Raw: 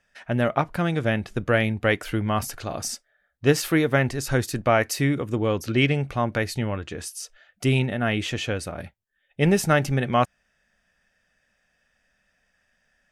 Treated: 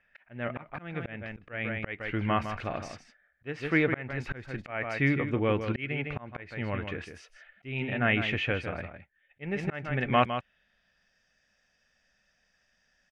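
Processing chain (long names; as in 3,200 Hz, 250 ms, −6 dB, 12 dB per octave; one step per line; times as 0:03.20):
slap from a distant wall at 27 metres, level −9 dB
volume swells 425 ms
low-pass filter sweep 2,300 Hz → 5,500 Hz, 0:10.04–0:11.19
level −4 dB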